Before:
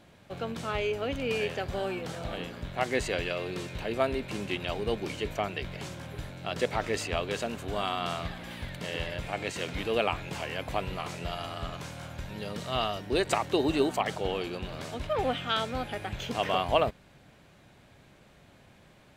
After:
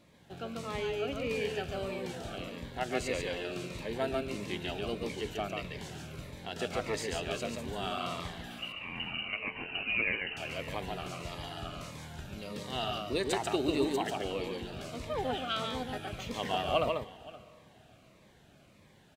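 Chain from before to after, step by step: 8.58–10.37 inverted band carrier 2900 Hz; low shelf 68 Hz -7.5 dB; tapped delay 0.141/0.522 s -3.5/-19.5 dB; on a send at -17.5 dB: reverb RT60 3.5 s, pre-delay 5 ms; on the sum: cascading phaser falling 1.6 Hz; gain -3.5 dB

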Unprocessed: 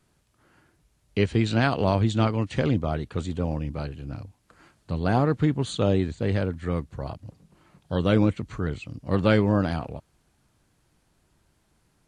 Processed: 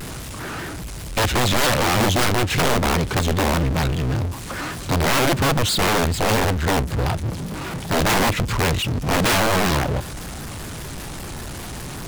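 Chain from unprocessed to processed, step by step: power-law curve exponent 0.35; wrapped overs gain 10.5 dB; shaped vibrato square 5.1 Hz, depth 160 cents; gain -4.5 dB

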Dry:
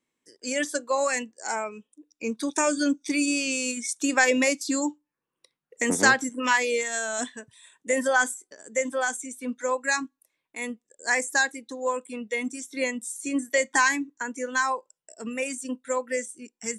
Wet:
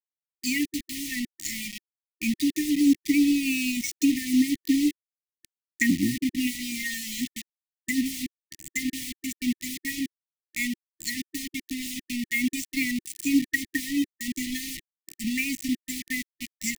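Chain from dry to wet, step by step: treble ducked by the level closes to 680 Hz, closed at -19.5 dBFS; requantised 6-bit, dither none; brick-wall FIR band-stop 340–1800 Hz; gain +5.5 dB

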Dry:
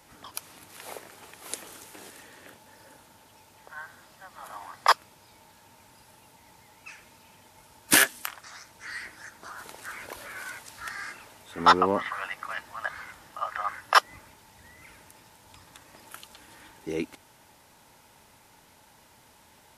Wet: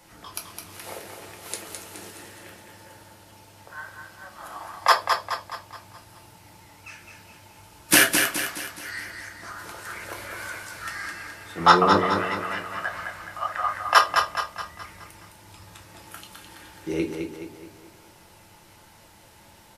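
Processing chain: feedback echo 0.211 s, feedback 47%, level -5.5 dB; on a send at -2 dB: reverb RT60 0.30 s, pre-delay 5 ms; on the sum: gain +1 dB

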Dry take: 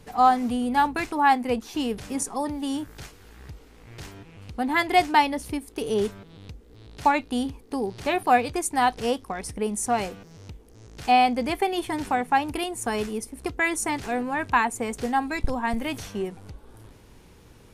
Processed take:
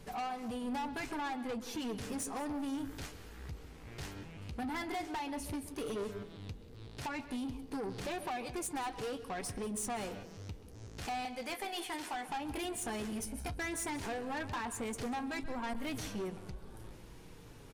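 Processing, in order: 11.25–12.29 HPF 1100 Hz 6 dB/oct; 13.12–13.57 comb 1.3 ms, depth 92%; compressor 12:1, threshold -26 dBFS, peak gain reduction 14 dB; flange 0.12 Hz, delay 5.1 ms, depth 8.8 ms, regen -44%; soft clip -36.5 dBFS, distortion -8 dB; echo 0.188 s -19.5 dB; reverb RT60 0.60 s, pre-delay 0.131 s, DRR 13.5 dB; gain +1.5 dB

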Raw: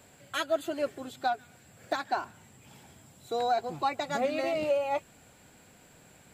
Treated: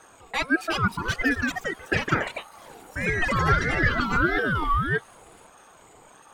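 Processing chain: formant sharpening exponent 1.5; echoes that change speed 0.435 s, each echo +4 st, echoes 3; ring modulator with a swept carrier 800 Hz, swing 30%, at 1.6 Hz; gain +8 dB

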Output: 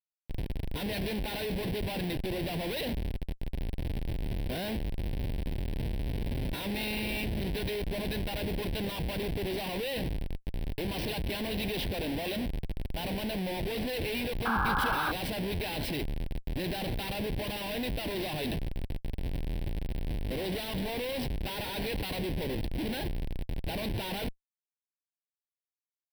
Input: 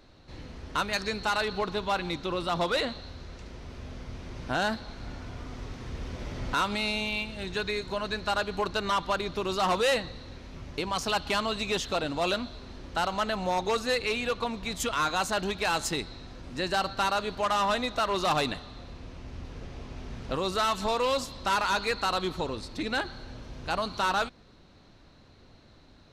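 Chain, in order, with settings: Schmitt trigger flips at -36 dBFS; fixed phaser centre 3000 Hz, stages 4; painted sound noise, 14.45–15.12, 750–1700 Hz -30 dBFS

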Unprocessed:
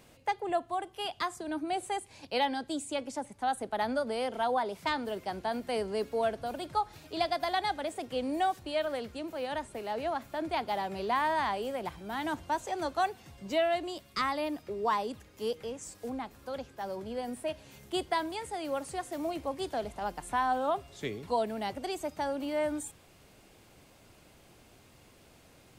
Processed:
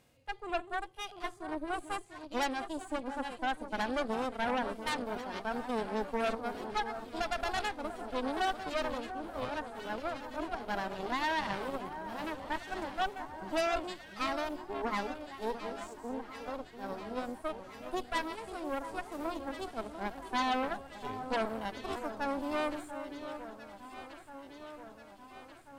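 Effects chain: reverse delay 0.57 s, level -11 dB; harmonic-percussive split percussive -17 dB; added harmonics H 6 -10 dB, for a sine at -18.5 dBFS; on a send: echo with dull and thin repeats by turns 0.693 s, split 1500 Hz, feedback 78%, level -10 dB; on the sum: gain -4.5 dB

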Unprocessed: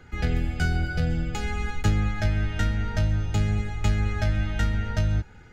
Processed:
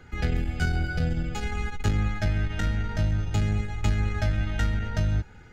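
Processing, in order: core saturation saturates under 86 Hz

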